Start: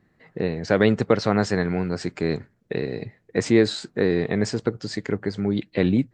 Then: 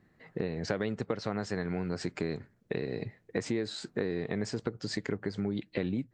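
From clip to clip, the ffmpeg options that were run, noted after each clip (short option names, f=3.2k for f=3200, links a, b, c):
-af "acompressor=threshold=-27dB:ratio=6,volume=-2dB"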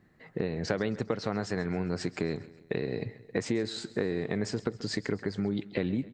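-af "aecho=1:1:134|268|402|536:0.119|0.0618|0.0321|0.0167,volume=2dB"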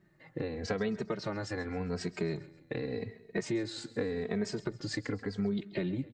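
-filter_complex "[0:a]asplit=2[a][b];[b]adelay=2.8,afreqshift=-0.87[c];[a][c]amix=inputs=2:normalize=1"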